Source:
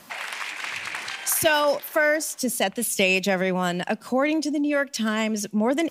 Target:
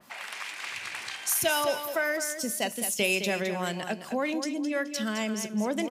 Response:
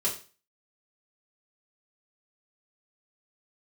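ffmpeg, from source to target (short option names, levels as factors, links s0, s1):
-filter_complex "[0:a]aecho=1:1:212|424|636:0.355|0.0887|0.0222,asplit=2[s0][s1];[1:a]atrim=start_sample=2205[s2];[s1][s2]afir=irnorm=-1:irlink=0,volume=0.1[s3];[s0][s3]amix=inputs=2:normalize=0,adynamicequalizer=threshold=0.0251:dfrequency=2800:dqfactor=0.7:tfrequency=2800:tqfactor=0.7:attack=5:release=100:ratio=0.375:range=2:mode=boostabove:tftype=highshelf,volume=0.398"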